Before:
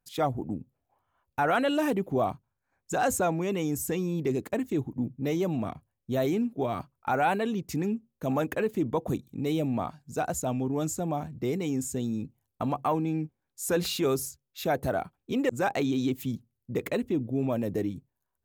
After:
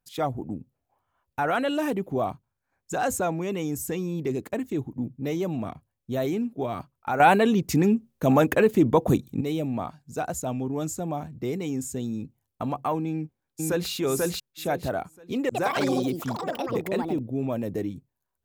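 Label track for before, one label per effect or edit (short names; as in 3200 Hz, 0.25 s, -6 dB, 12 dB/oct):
7.200000	9.410000	gain +8.5 dB
13.100000	13.900000	echo throw 0.49 s, feedback 25%, level -0.5 dB
15.440000	17.760000	echoes that change speed 0.105 s, each echo +6 st, echoes 3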